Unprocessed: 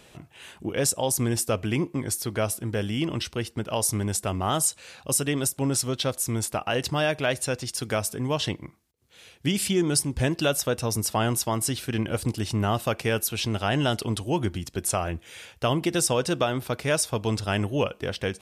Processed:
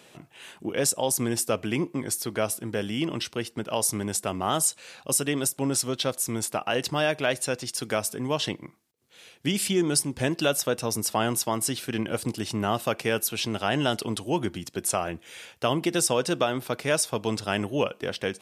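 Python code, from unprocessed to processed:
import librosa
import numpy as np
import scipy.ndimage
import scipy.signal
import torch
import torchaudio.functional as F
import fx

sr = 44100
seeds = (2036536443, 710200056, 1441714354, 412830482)

y = scipy.signal.sosfilt(scipy.signal.butter(2, 160.0, 'highpass', fs=sr, output='sos'), x)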